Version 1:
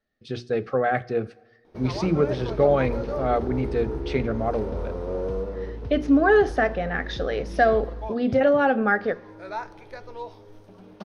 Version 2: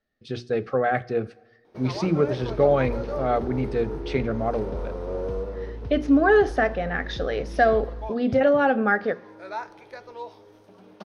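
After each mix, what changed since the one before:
first sound: add high-pass 260 Hz 6 dB/octave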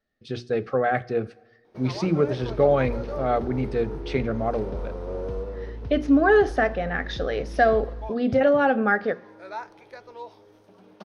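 first sound: send -8.5 dB

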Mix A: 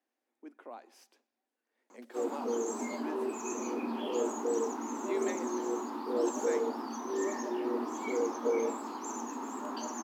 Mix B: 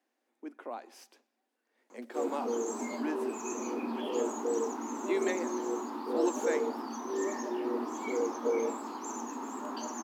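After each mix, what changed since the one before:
speech +6.0 dB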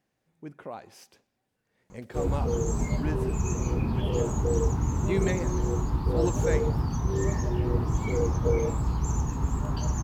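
master: remove rippled Chebyshev high-pass 230 Hz, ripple 3 dB

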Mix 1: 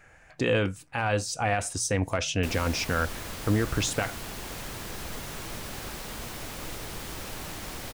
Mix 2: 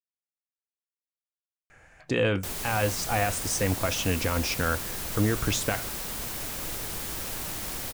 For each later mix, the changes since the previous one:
speech: entry +1.70 s; background: add treble shelf 7 kHz +10.5 dB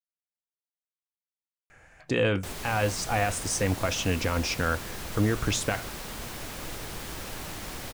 background: add treble shelf 7 kHz -10.5 dB

